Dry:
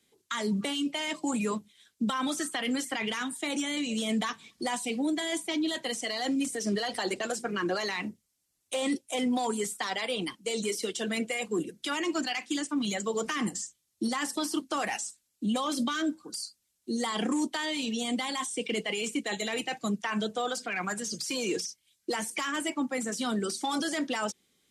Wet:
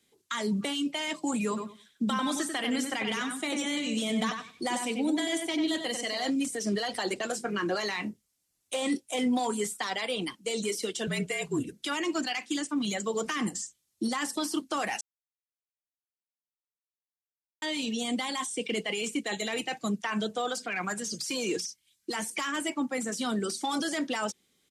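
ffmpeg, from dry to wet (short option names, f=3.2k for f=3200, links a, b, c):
-filter_complex "[0:a]asplit=3[a][b][c];[a]afade=t=out:st=1.56:d=0.02[d];[b]asplit=2[e][f];[f]adelay=94,lowpass=f=3.4k:p=1,volume=-5dB,asplit=2[g][h];[h]adelay=94,lowpass=f=3.4k:p=1,volume=0.2,asplit=2[i][j];[j]adelay=94,lowpass=f=3.4k:p=1,volume=0.2[k];[e][g][i][k]amix=inputs=4:normalize=0,afade=t=in:st=1.56:d=0.02,afade=t=out:st=6.29:d=0.02[l];[c]afade=t=in:st=6.29:d=0.02[m];[d][l][m]amix=inputs=3:normalize=0,asettb=1/sr,asplit=3[n][o][p];[n]atrim=end=7.294[q];[o]atrim=start=7.29:end=9.69,asetpts=PTS-STARTPTS,afade=t=in:d=0.004:c=qsin,afade=t=out:st=2.396:d=0.004:c=qsin,asplit=2[r][s];[s]adelay=24,volume=-13dB[t];[r][t]amix=inputs=2:normalize=0,atrim=end_sample=105840[u];[p]atrim=start=9.686[v];[q][u]acrossfade=d=0.004:c1=hsin:c2=qsin[w];[w][v]acrossfade=d=0.004:c1=qsin:c2=hsin,asettb=1/sr,asplit=3[x][y][z];[x]atrim=end=11.074[aa];[y]atrim=start=11.07:end=11.73,asetpts=PTS-STARTPTS,afade=t=in:d=0.004:c=qsin,afade=t=out:st=0.656:d=0.004:c=qsin,afreqshift=-42[ab];[z]atrim=start=11.726[ac];[aa][ab]acrossfade=d=0.004:c1=hsin:c2=qsin[ad];[ad][ac]acrossfade=d=0.004:c1=qsin:c2=hsin,asettb=1/sr,asplit=3[ae][af][ag];[ae]atrim=end=21.574[ah];[af]atrim=start=21.57:end=22.16,asetpts=PTS-STARTPTS,afade=t=in:d=0.004:c=qsin,afade=t=out:st=0.586:d=0.004:c=qsin,equalizer=f=560:w=3:g=-14.5[ai];[ag]atrim=start=22.156[aj];[ah][ai]acrossfade=d=0.004:c1=hsin:c2=qsin[ak];[ak][aj]acrossfade=d=0.004:c1=qsin:c2=hsin,asplit=3[al][am][an];[al]atrim=end=15.01,asetpts=PTS-STARTPTS,afade=t=out:st=15.006:d=0.004:c=hsin[ao];[am]atrim=start=15.01:end=17.62,asetpts=PTS-STARTPTS,volume=0[ap];[an]atrim=start=17.62,asetpts=PTS-STARTPTS,afade=t=in:d=0.004:c=hsin[aq];[ao][ap][aq]concat=n=3:v=0:a=1"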